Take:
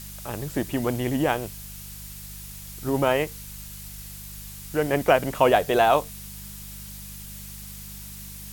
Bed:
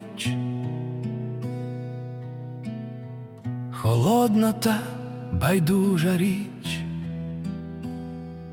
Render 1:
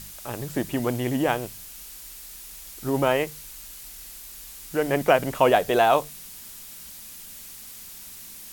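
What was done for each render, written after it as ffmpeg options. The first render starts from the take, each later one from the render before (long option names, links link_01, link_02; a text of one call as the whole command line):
ffmpeg -i in.wav -af "bandreject=frequency=50:width_type=h:width=4,bandreject=frequency=100:width_type=h:width=4,bandreject=frequency=150:width_type=h:width=4,bandreject=frequency=200:width_type=h:width=4" out.wav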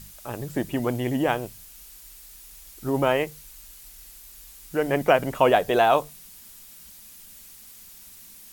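ffmpeg -i in.wav -af "afftdn=noise_reduction=6:noise_floor=-42" out.wav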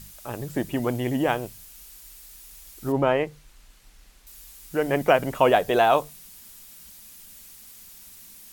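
ffmpeg -i in.wav -filter_complex "[0:a]asettb=1/sr,asplit=3[link_01][link_02][link_03];[link_01]atrim=end=2.924[link_04];[link_02]atrim=start=2.92:end=4.27,asetpts=PTS-STARTPTS,afade=type=in:duration=0.004:curve=qsin,afade=type=out:start_time=1.346:duration=0.004:curve=qsin,aemphasis=mode=reproduction:type=75fm[link_05];[link_03]atrim=start=4.266[link_06];[link_04][link_05]acrossfade=duration=0.004:curve1=hsin:curve2=qsin[link_07];[link_07][link_06]acrossfade=duration=0.004:curve1=qsin:curve2=hsin" out.wav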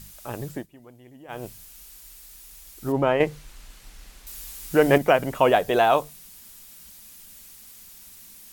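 ffmpeg -i in.wav -filter_complex "[0:a]asettb=1/sr,asplit=3[link_01][link_02][link_03];[link_01]atrim=end=1.994[link_04];[link_02]atrim=start=1.99:end=2.43,asetpts=PTS-STARTPTS,afade=type=in:duration=0.004:curve=qsin,afade=type=out:start_time=0.436:duration=0.004:curve=qsin,asoftclip=type=hard:threshold=-37dB[link_05];[link_03]atrim=start=2.426[link_06];[link_04][link_05]acrossfade=duration=0.004:curve1=hsin:curve2=qsin[link_07];[link_07][link_06]acrossfade=duration=0.004:curve1=qsin:curve2=hsin,asettb=1/sr,asplit=3[link_08][link_09][link_10];[link_08]atrim=end=3.204[link_11];[link_09]atrim=start=3.2:end=4.98,asetpts=PTS-STARTPTS,afade=type=in:duration=0.004:curve=qsin,afade=type=out:start_time=1.776:duration=0.004:curve=qsin,acontrast=82[link_12];[link_10]atrim=start=4.976[link_13];[link_11][link_12]acrossfade=duration=0.004:curve1=hsin:curve2=qsin[link_14];[link_14][link_13]acrossfade=duration=0.004:curve1=qsin:curve2=hsin,asplit=3[link_15][link_16][link_17];[link_15]atrim=end=0.67,asetpts=PTS-STARTPTS,afade=type=out:start_time=0.47:duration=0.2:silence=0.0707946[link_18];[link_16]atrim=start=0.67:end=1.28,asetpts=PTS-STARTPTS,volume=-23dB[link_19];[link_17]atrim=start=1.28,asetpts=PTS-STARTPTS,afade=type=in:duration=0.2:silence=0.0707946[link_20];[link_18][link_19][link_20]concat=n=3:v=0:a=1" out.wav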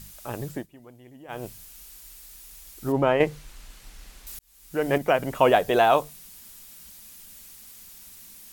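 ffmpeg -i in.wav -filter_complex "[0:a]asplit=2[link_01][link_02];[link_01]atrim=end=4.39,asetpts=PTS-STARTPTS,afade=type=out:start_time=4.386:duration=0.004:curve=hsin[link_03];[link_02]atrim=start=4.39,asetpts=PTS-STARTPTS,afade=type=in:duration=1.05[link_04];[link_03][link_04]concat=n=2:v=0:a=1" out.wav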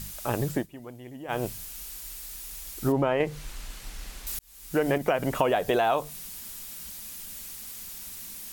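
ffmpeg -i in.wav -filter_complex "[0:a]asplit=2[link_01][link_02];[link_02]alimiter=limit=-16.5dB:level=0:latency=1,volume=0dB[link_03];[link_01][link_03]amix=inputs=2:normalize=0,acompressor=threshold=-21dB:ratio=6" out.wav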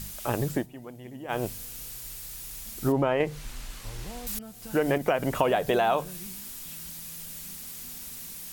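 ffmpeg -i in.wav -i bed.wav -filter_complex "[1:a]volume=-23dB[link_01];[0:a][link_01]amix=inputs=2:normalize=0" out.wav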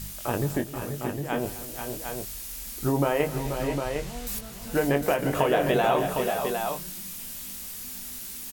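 ffmpeg -i in.wav -filter_complex "[0:a]asplit=2[link_01][link_02];[link_02]adelay=21,volume=-7dB[link_03];[link_01][link_03]amix=inputs=2:normalize=0,aecho=1:1:164|258|483|499|756:0.133|0.15|0.376|0.282|0.501" out.wav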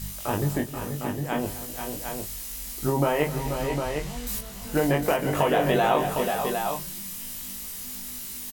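ffmpeg -i in.wav -filter_complex "[0:a]asplit=2[link_01][link_02];[link_02]adelay=20,volume=-4dB[link_03];[link_01][link_03]amix=inputs=2:normalize=0" out.wav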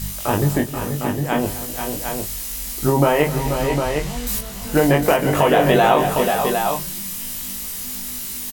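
ffmpeg -i in.wav -af "volume=7.5dB,alimiter=limit=-3dB:level=0:latency=1" out.wav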